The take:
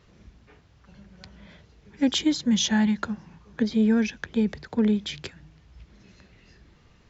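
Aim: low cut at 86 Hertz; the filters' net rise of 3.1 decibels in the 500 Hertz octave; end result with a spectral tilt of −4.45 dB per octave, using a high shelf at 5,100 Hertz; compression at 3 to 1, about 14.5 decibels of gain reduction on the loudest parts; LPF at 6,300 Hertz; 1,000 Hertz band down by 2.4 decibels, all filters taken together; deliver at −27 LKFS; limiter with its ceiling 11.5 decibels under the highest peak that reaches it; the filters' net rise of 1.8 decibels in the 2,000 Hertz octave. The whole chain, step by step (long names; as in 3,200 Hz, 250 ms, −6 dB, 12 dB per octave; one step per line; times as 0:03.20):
high-pass filter 86 Hz
low-pass filter 6,300 Hz
parametric band 500 Hz +4.5 dB
parametric band 1,000 Hz −6 dB
parametric band 2,000 Hz +3.5 dB
high-shelf EQ 5,100 Hz +3.5 dB
downward compressor 3 to 1, threshold −37 dBFS
level +15 dB
brickwall limiter −16.5 dBFS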